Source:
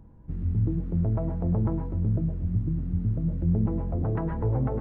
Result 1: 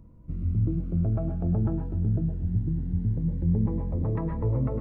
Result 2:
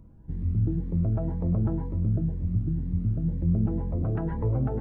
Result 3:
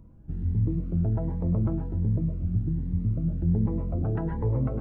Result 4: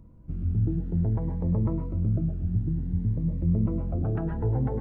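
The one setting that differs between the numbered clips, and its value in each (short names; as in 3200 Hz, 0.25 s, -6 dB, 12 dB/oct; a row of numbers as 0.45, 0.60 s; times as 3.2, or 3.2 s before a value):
cascading phaser, rate: 0.21, 2, 1.3, 0.56 Hz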